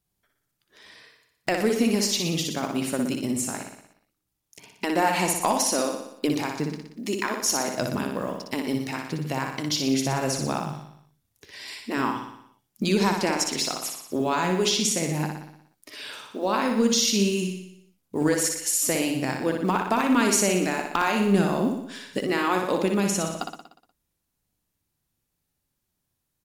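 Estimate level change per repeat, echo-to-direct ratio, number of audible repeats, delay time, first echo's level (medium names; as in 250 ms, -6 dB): -4.5 dB, -3.0 dB, 7, 60 ms, -5.0 dB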